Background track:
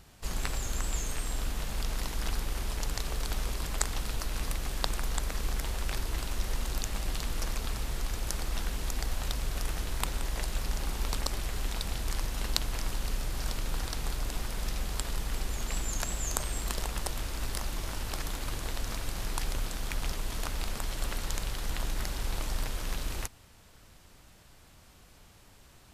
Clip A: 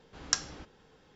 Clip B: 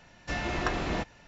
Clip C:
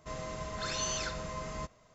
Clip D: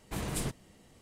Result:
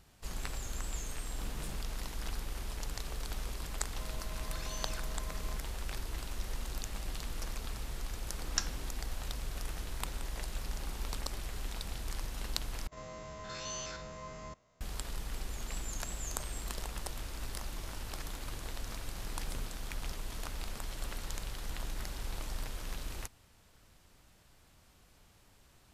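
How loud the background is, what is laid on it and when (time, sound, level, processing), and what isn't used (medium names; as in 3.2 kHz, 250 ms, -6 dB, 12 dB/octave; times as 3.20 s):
background track -6.5 dB
1.27 s: add D -13 dB
3.91 s: add C -10.5 dB
8.25 s: add A -5 dB
12.87 s: replace with C -5.5 dB + spectrogram pixelated in time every 50 ms
19.14 s: add D -16 dB
not used: B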